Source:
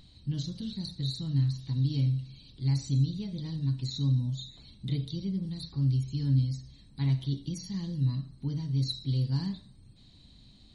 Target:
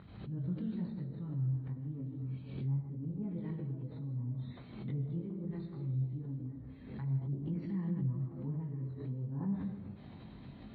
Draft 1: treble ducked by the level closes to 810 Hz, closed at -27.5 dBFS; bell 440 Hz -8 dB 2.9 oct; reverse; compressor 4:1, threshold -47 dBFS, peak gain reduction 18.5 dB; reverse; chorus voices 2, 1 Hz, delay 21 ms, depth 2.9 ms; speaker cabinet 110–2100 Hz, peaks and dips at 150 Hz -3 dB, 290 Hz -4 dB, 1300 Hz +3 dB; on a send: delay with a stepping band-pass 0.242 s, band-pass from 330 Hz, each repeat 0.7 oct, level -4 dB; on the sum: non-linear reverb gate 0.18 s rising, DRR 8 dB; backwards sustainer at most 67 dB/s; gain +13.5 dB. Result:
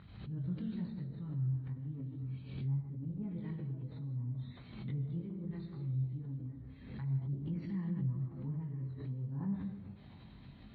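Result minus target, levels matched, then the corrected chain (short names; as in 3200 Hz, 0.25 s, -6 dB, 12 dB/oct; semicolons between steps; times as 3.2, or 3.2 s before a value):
500 Hz band -3.5 dB
treble ducked by the level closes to 810 Hz, closed at -27.5 dBFS; reverse; compressor 4:1, threshold -47 dBFS, peak gain reduction 21 dB; reverse; chorus voices 2, 1 Hz, delay 21 ms, depth 2.9 ms; speaker cabinet 110–2100 Hz, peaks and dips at 150 Hz -3 dB, 290 Hz -4 dB, 1300 Hz +3 dB; on a send: delay with a stepping band-pass 0.242 s, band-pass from 330 Hz, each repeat 0.7 oct, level -4 dB; on the sum: non-linear reverb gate 0.18 s rising, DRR 8 dB; backwards sustainer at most 67 dB/s; gain +13.5 dB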